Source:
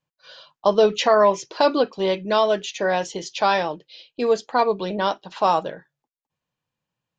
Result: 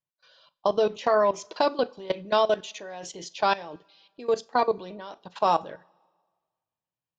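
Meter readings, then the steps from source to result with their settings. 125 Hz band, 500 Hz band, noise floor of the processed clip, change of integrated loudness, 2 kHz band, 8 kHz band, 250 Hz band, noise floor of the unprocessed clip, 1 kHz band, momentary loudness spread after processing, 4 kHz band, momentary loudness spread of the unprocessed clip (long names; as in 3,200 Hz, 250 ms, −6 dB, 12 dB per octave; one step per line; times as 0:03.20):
−9.0 dB, −6.0 dB, below −85 dBFS, −5.0 dB, −6.5 dB, can't be measured, −8.5 dB, below −85 dBFS, −5.0 dB, 16 LU, −7.0 dB, 9 LU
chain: output level in coarse steps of 19 dB
coupled-rooms reverb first 0.31 s, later 1.6 s, from −20 dB, DRR 15.5 dB
level −1.5 dB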